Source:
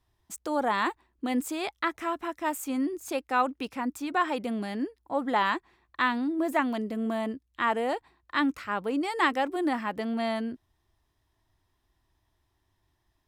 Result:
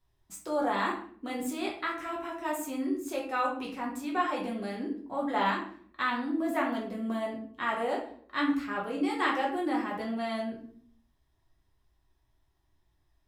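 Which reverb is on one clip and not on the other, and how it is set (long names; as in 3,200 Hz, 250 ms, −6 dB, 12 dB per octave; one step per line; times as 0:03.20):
rectangular room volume 64 cubic metres, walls mixed, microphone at 1 metre
level −7 dB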